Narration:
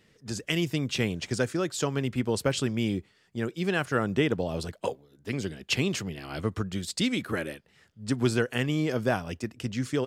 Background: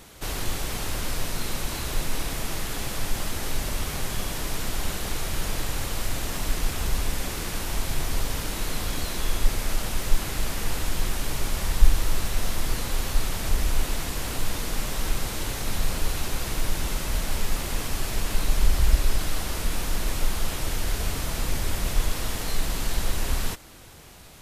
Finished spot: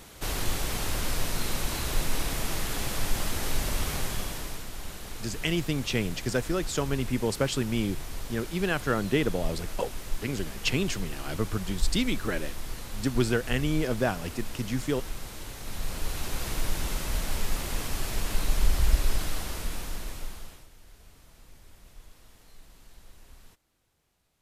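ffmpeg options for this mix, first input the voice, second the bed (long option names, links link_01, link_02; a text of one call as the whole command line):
ffmpeg -i stem1.wav -i stem2.wav -filter_complex "[0:a]adelay=4950,volume=-0.5dB[link_01];[1:a]volume=7dB,afade=type=out:start_time=3.92:duration=0.74:silence=0.316228,afade=type=in:start_time=15.59:duration=0.87:silence=0.421697,afade=type=out:start_time=19.17:duration=1.51:silence=0.0668344[link_02];[link_01][link_02]amix=inputs=2:normalize=0" out.wav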